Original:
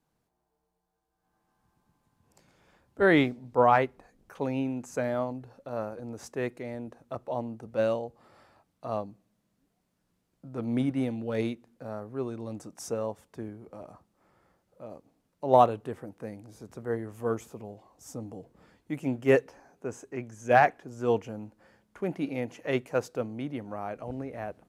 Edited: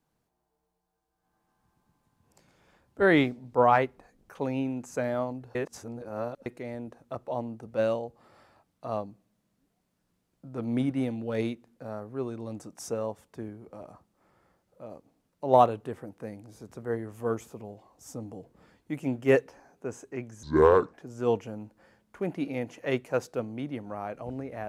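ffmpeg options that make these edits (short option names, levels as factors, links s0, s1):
-filter_complex "[0:a]asplit=5[s0][s1][s2][s3][s4];[s0]atrim=end=5.552[s5];[s1]atrim=start=5.548:end=6.462,asetpts=PTS-STARTPTS,areverse[s6];[s2]atrim=start=6.458:end=20.434[s7];[s3]atrim=start=20.43:end=20.75,asetpts=PTS-STARTPTS,asetrate=27783,aresample=44100[s8];[s4]atrim=start=20.746[s9];[s5][s6]acrossfade=d=0.004:c1=hsin:c2=hsin[s10];[s10][s7]acrossfade=d=0.004:c1=hsin:c2=hsin[s11];[s11][s8]acrossfade=d=0.004:c1=hsin:c2=hsin[s12];[s12][s9]acrossfade=d=0.004:c1=hsin:c2=hsin"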